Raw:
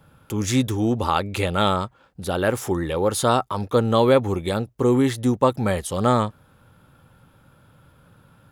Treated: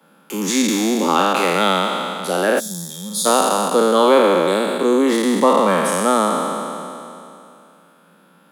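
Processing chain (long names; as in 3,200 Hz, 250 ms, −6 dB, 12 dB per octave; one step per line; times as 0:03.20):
peak hold with a decay on every bin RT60 2.75 s
Butterworth high-pass 170 Hz 96 dB per octave
gain on a spectral selection 0:02.60–0:03.26, 230–3,200 Hz −26 dB
level +1 dB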